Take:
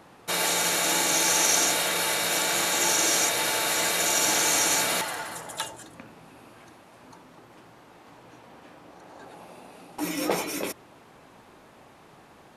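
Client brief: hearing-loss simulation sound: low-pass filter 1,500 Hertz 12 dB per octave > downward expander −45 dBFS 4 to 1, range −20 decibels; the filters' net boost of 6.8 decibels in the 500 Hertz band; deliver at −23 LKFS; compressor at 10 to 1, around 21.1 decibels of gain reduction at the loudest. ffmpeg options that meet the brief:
ffmpeg -i in.wav -af "equalizer=frequency=500:width_type=o:gain=8.5,acompressor=threshold=-37dB:ratio=10,lowpass=1500,agate=range=-20dB:threshold=-45dB:ratio=4,volume=21.5dB" out.wav

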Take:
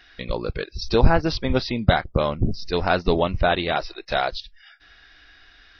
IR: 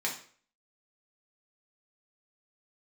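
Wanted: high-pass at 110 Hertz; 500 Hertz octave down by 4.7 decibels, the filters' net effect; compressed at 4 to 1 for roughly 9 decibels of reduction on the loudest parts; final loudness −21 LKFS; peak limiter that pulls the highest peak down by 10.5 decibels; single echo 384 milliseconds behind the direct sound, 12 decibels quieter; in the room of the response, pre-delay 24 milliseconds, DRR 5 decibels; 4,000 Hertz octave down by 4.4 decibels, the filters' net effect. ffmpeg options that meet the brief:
-filter_complex "[0:a]highpass=110,equalizer=frequency=500:width_type=o:gain=-6,equalizer=frequency=4000:width_type=o:gain=-5,acompressor=threshold=-26dB:ratio=4,alimiter=limit=-23.5dB:level=0:latency=1,aecho=1:1:384:0.251,asplit=2[link_01][link_02];[1:a]atrim=start_sample=2205,adelay=24[link_03];[link_02][link_03]afir=irnorm=-1:irlink=0,volume=-11dB[link_04];[link_01][link_04]amix=inputs=2:normalize=0,volume=13.5dB"

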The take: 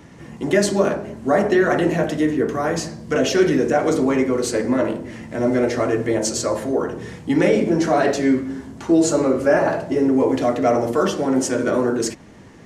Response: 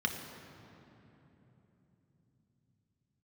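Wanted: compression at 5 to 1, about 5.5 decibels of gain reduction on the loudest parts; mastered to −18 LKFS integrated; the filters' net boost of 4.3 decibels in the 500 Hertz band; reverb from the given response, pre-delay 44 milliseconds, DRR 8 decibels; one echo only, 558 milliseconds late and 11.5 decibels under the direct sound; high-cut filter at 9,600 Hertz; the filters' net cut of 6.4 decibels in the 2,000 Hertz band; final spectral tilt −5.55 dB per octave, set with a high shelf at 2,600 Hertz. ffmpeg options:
-filter_complex "[0:a]lowpass=9600,equalizer=frequency=500:width_type=o:gain=6,equalizer=frequency=2000:width_type=o:gain=-7.5,highshelf=frequency=2600:gain=-3.5,acompressor=threshold=-14dB:ratio=5,aecho=1:1:558:0.266,asplit=2[link_01][link_02];[1:a]atrim=start_sample=2205,adelay=44[link_03];[link_02][link_03]afir=irnorm=-1:irlink=0,volume=-14.5dB[link_04];[link_01][link_04]amix=inputs=2:normalize=0,volume=1dB"

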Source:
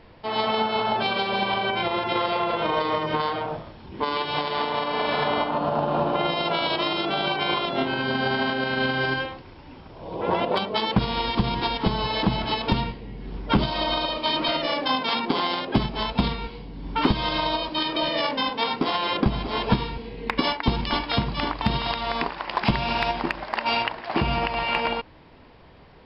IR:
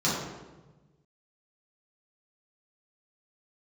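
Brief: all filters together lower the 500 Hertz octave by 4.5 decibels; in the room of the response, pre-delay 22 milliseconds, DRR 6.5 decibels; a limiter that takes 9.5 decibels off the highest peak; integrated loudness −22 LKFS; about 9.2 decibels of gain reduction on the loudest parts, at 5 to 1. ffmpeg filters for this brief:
-filter_complex "[0:a]equalizer=frequency=500:width_type=o:gain=-6,acompressor=threshold=-27dB:ratio=5,alimiter=limit=-23dB:level=0:latency=1,asplit=2[link_01][link_02];[1:a]atrim=start_sample=2205,adelay=22[link_03];[link_02][link_03]afir=irnorm=-1:irlink=0,volume=-19dB[link_04];[link_01][link_04]amix=inputs=2:normalize=0,volume=10dB"

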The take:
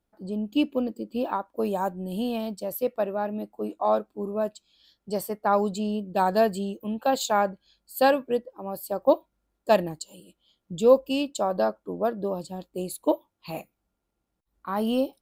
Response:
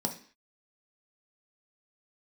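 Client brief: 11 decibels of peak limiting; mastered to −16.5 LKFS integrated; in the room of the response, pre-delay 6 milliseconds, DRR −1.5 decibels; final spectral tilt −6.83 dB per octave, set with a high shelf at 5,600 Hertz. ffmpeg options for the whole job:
-filter_complex "[0:a]highshelf=frequency=5600:gain=6,alimiter=limit=-17dB:level=0:latency=1,asplit=2[link_01][link_02];[1:a]atrim=start_sample=2205,adelay=6[link_03];[link_02][link_03]afir=irnorm=-1:irlink=0,volume=-3dB[link_04];[link_01][link_04]amix=inputs=2:normalize=0,volume=4.5dB"

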